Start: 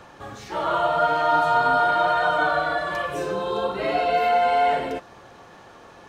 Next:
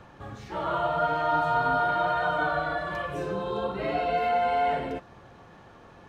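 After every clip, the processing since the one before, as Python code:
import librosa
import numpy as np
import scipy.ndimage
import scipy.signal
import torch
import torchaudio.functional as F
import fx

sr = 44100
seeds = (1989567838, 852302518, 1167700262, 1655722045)

y = fx.bass_treble(x, sr, bass_db=8, treble_db=-6)
y = y * librosa.db_to_amplitude(-5.5)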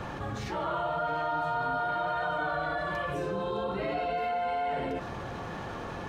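y = fx.env_flatten(x, sr, amount_pct=70)
y = y * librosa.db_to_amplitude(-7.0)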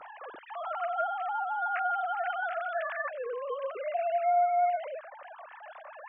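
y = fx.sine_speech(x, sr)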